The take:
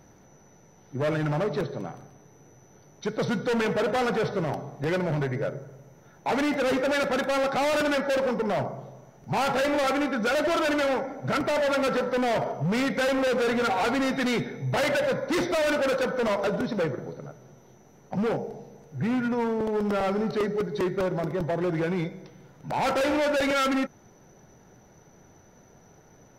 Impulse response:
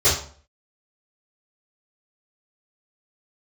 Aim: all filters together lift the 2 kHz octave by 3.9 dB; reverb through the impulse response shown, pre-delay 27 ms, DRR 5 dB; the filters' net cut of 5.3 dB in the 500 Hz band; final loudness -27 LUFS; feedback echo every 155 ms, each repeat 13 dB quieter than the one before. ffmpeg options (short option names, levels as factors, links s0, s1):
-filter_complex "[0:a]equalizer=f=500:t=o:g=-6.5,equalizer=f=2000:t=o:g=5.5,aecho=1:1:155|310|465:0.224|0.0493|0.0108,asplit=2[s0][s1];[1:a]atrim=start_sample=2205,adelay=27[s2];[s1][s2]afir=irnorm=-1:irlink=0,volume=0.0631[s3];[s0][s3]amix=inputs=2:normalize=0,volume=0.891"